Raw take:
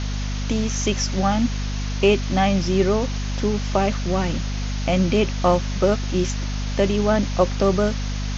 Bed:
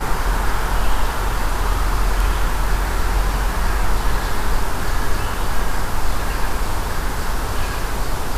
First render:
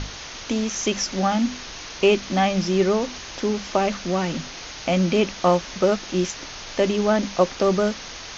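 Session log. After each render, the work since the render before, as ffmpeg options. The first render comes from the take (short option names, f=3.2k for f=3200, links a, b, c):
-af "bandreject=f=50:t=h:w=6,bandreject=f=100:t=h:w=6,bandreject=f=150:t=h:w=6,bandreject=f=200:t=h:w=6,bandreject=f=250:t=h:w=6"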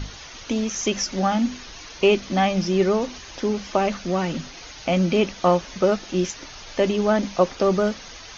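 -af "afftdn=nr=8:nf=-37"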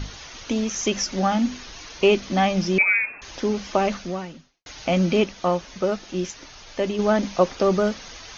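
-filter_complex "[0:a]asettb=1/sr,asplit=3[a][b][c];[a]atrim=end=2.784[d];[b]atrim=start=2.78:end=3.22,asetpts=PTS-STARTPTS,afade=t=in:d=0.004:c=qsin,afade=t=out:st=0.436:d=0.004:c=qsin,lowpass=f=2.3k:t=q:w=0.5098,lowpass=f=2.3k:t=q:w=0.6013,lowpass=f=2.3k:t=q:w=0.9,lowpass=f=2.3k:t=q:w=2.563,afreqshift=-2700[e];[c]atrim=start=3.216[f];[d][e]acrossfade=d=0.004:c1=hsin:c2=qsin[g];[g][f]acrossfade=d=0.004:c1=qsin:c2=hsin,asplit=4[h][i][j][k];[h]atrim=end=4.66,asetpts=PTS-STARTPTS,afade=t=out:st=3.94:d=0.72:c=qua[l];[i]atrim=start=4.66:end=5.242,asetpts=PTS-STARTPTS,afade=t=in:d=0.004:c=hsin[m];[j]atrim=start=5.238:end=6.992,asetpts=PTS-STARTPTS,volume=-4dB[n];[k]atrim=start=6.988[o];[l][m]concat=n=2:v=0:a=1[p];[p][n]acrossfade=d=0.004:c1=hsin:c2=hsin[q];[q][o]acrossfade=d=0.004:c1=hsin:c2=hsin"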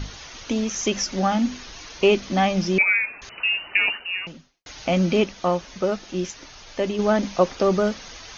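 -filter_complex "[0:a]asettb=1/sr,asplit=3[a][b][c];[a]atrim=end=3.294[d];[b]atrim=start=3.29:end=4.27,asetpts=PTS-STARTPTS,afade=t=in:d=0.004:c=qsin,afade=t=out:st=0.976:d=0.004:c=qsin,lowpass=f=2.6k:t=q:w=0.5098,lowpass=f=2.6k:t=q:w=0.6013,lowpass=f=2.6k:t=q:w=0.9,lowpass=f=2.6k:t=q:w=2.563,afreqshift=-3000[e];[c]atrim=start=4.266[f];[d][e]acrossfade=d=0.004:c1=hsin:c2=qsin[g];[g][f]acrossfade=d=0.004:c1=qsin:c2=hsin"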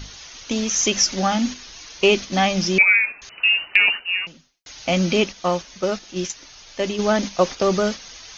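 -af "highshelf=f=2.5k:g=10,agate=range=-6dB:threshold=-26dB:ratio=16:detection=peak"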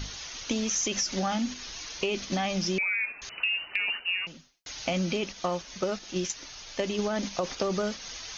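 -af "alimiter=limit=-12dB:level=0:latency=1:release=11,acompressor=threshold=-26dB:ratio=6"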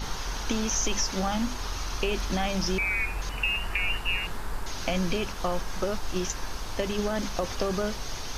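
-filter_complex "[1:a]volume=-14.5dB[a];[0:a][a]amix=inputs=2:normalize=0"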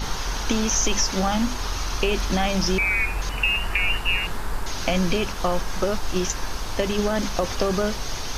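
-af "volume=5.5dB"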